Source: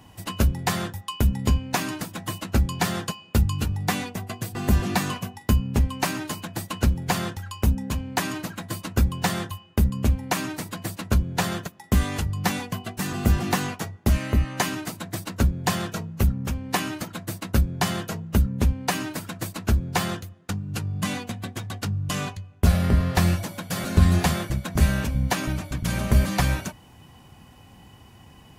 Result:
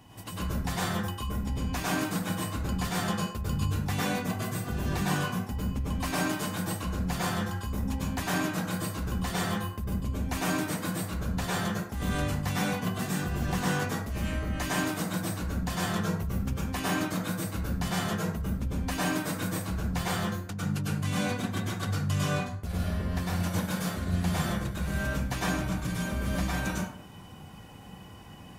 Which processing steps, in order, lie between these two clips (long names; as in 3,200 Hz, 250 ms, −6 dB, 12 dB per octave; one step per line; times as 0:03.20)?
reversed playback
downward compressor 6 to 1, threshold −28 dBFS, peak gain reduction 16.5 dB
reversed playback
dense smooth reverb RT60 0.6 s, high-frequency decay 0.55×, pre-delay 90 ms, DRR −6 dB
level −4.5 dB